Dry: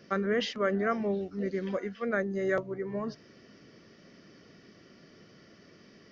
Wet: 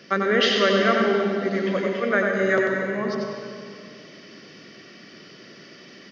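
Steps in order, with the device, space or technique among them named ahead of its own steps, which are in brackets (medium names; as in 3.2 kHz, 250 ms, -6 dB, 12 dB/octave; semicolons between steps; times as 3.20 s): PA in a hall (high-pass 150 Hz 12 dB/octave; peaking EQ 3.1 kHz +7.5 dB 2 oct; delay 93 ms -4.5 dB; reverberation RT60 2.3 s, pre-delay 93 ms, DRR 3 dB); trim +5.5 dB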